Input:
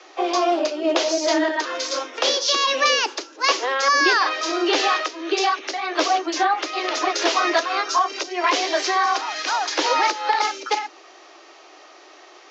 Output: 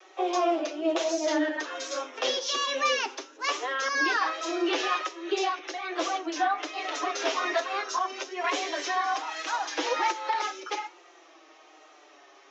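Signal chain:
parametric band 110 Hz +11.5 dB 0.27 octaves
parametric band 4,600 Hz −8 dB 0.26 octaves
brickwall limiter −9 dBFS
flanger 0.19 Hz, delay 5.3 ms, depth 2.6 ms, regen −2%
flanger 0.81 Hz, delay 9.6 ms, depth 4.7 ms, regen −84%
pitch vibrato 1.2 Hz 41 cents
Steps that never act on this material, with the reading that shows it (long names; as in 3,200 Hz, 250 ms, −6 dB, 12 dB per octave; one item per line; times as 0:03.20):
parametric band 110 Hz: nothing at its input below 250 Hz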